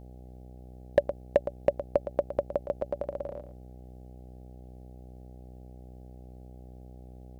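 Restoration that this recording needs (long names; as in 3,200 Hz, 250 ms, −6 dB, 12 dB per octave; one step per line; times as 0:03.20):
clipped peaks rebuilt −10.5 dBFS
hum removal 62.5 Hz, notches 13
echo removal 114 ms −11.5 dB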